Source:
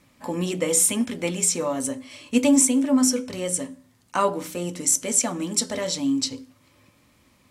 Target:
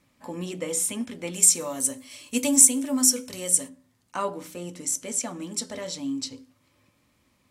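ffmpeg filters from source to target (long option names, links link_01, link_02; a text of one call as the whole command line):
ffmpeg -i in.wav -filter_complex "[0:a]asplit=3[link_01][link_02][link_03];[link_01]afade=type=out:start_time=1.33:duration=0.02[link_04];[link_02]aemphasis=mode=production:type=75kf,afade=type=in:start_time=1.33:duration=0.02,afade=type=out:start_time=3.68:duration=0.02[link_05];[link_03]afade=type=in:start_time=3.68:duration=0.02[link_06];[link_04][link_05][link_06]amix=inputs=3:normalize=0,volume=-7dB" out.wav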